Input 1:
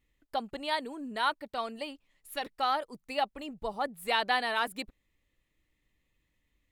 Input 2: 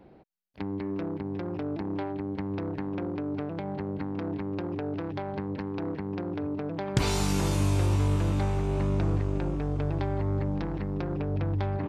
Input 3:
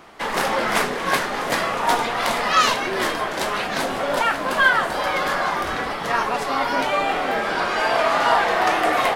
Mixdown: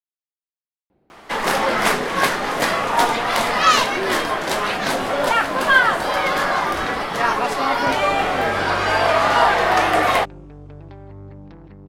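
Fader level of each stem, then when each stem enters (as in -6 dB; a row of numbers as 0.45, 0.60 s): off, -10.0 dB, +2.5 dB; off, 0.90 s, 1.10 s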